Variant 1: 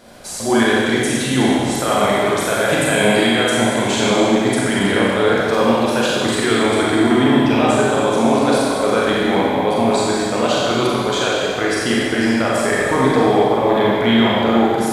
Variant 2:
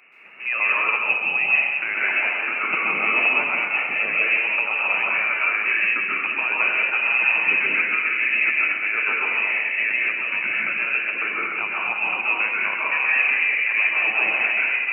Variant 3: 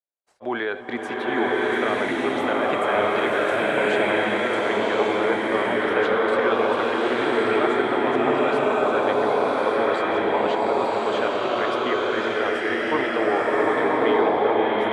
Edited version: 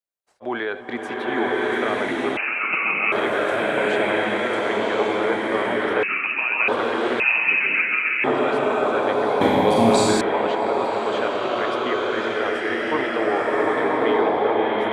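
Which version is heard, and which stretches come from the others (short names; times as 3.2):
3
2.37–3.12 from 2
6.03–6.68 from 2
7.2–8.24 from 2
9.41–10.21 from 1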